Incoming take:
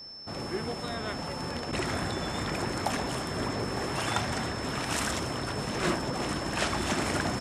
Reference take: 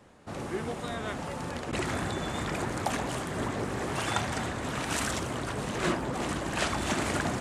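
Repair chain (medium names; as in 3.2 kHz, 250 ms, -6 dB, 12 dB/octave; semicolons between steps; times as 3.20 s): clip repair -14.5 dBFS; band-stop 5.3 kHz, Q 30; inverse comb 907 ms -11.5 dB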